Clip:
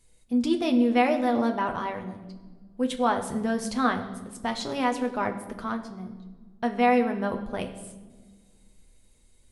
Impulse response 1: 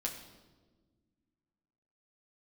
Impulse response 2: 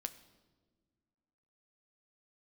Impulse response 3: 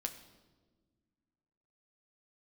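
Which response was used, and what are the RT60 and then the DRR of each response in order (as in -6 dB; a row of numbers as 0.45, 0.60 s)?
3; 1.4 s, not exponential, 1.4 s; -2.0, 8.0, 4.0 dB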